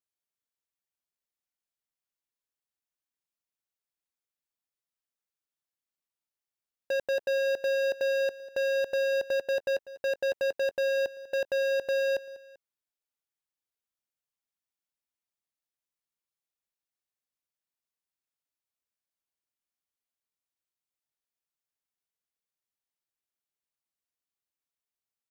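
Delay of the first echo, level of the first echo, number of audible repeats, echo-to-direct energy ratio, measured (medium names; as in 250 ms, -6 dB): 195 ms, -18.0 dB, 2, -17.0 dB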